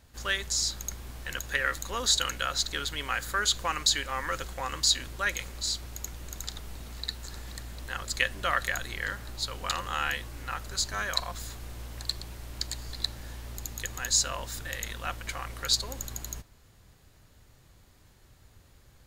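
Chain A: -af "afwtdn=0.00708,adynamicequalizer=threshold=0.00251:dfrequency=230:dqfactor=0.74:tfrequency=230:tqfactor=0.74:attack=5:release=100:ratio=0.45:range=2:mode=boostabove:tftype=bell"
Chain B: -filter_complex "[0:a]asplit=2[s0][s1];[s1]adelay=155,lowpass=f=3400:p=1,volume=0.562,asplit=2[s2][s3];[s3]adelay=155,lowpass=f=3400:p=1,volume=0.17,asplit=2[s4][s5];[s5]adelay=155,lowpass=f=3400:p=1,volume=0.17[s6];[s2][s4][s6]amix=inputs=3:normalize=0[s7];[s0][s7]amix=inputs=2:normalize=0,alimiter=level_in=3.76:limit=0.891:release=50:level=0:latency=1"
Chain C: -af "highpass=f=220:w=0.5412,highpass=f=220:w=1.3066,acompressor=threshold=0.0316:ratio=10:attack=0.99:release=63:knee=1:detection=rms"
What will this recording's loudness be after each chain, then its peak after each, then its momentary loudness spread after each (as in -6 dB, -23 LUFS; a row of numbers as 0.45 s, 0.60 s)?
-30.0 LUFS, -19.0 LUFS, -38.5 LUFS; -8.0 dBFS, -1.0 dBFS, -20.5 dBFS; 18 LU, 14 LU, 9 LU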